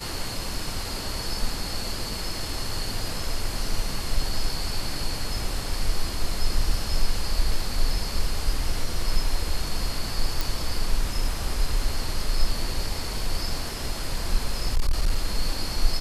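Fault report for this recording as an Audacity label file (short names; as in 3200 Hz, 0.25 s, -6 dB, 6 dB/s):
10.410000	10.410000	pop
14.660000	15.250000	clipped -16 dBFS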